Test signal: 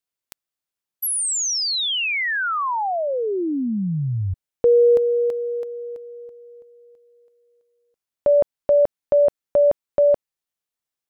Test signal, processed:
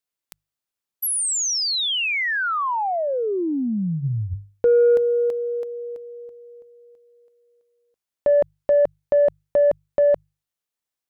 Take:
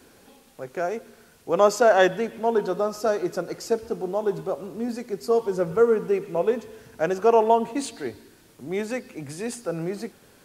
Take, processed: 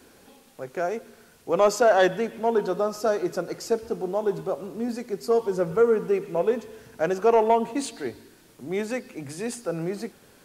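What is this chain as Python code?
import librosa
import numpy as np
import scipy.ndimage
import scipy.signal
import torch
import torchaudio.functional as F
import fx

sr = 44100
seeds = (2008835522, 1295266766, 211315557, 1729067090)

y = fx.hum_notches(x, sr, base_hz=50, count=3)
y = 10.0 ** (-8.5 / 20.0) * np.tanh(y / 10.0 ** (-8.5 / 20.0))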